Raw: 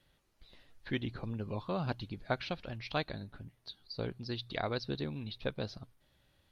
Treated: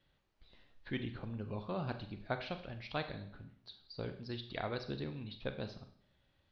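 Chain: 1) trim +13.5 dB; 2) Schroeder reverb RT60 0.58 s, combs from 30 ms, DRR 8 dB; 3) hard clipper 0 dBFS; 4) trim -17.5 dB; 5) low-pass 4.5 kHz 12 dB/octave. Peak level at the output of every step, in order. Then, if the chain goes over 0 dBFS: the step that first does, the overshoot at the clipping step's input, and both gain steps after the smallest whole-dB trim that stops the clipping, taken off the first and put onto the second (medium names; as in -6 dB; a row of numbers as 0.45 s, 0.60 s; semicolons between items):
-2.5 dBFS, -2.5 dBFS, -2.5 dBFS, -20.0 dBFS, -20.0 dBFS; nothing clips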